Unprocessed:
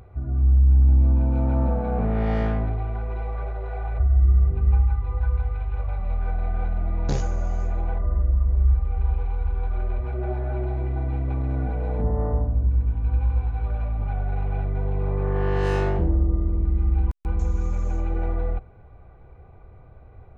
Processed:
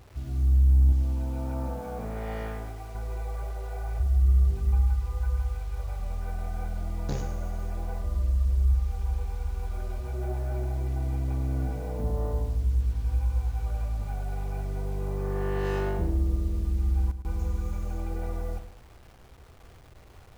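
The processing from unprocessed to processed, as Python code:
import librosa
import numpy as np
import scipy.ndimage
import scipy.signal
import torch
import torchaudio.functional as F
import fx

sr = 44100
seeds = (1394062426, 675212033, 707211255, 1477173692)

y = fx.low_shelf(x, sr, hz=410.0, db=-7.5, at=(0.92, 2.95))
y = fx.quant_dither(y, sr, seeds[0], bits=8, dither='none')
y = fx.echo_feedback(y, sr, ms=107, feedback_pct=31, wet_db=-11)
y = y * 10.0 ** (-6.0 / 20.0)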